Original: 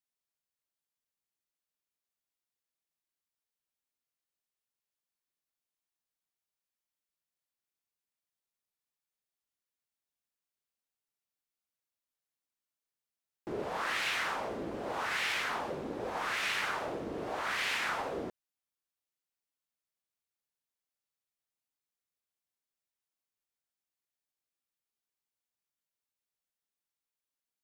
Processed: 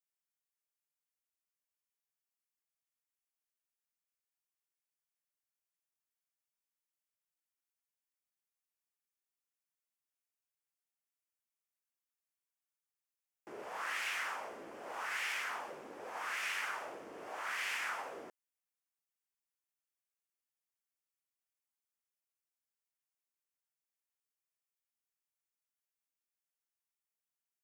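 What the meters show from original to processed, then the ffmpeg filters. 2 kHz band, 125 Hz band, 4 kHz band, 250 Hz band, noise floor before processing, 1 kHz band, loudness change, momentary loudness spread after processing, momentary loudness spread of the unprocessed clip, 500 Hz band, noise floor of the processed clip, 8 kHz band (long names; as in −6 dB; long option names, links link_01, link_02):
−4.5 dB, below −20 dB, −7.5 dB, −14.5 dB, below −85 dBFS, −6.0 dB, −5.5 dB, 13 LU, 8 LU, −10.0 dB, below −85 dBFS, −3.0 dB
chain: -af "highpass=frequency=1200:poles=1,equalizer=frequency=3900:width_type=o:width=0.52:gain=-10.5,volume=-2dB"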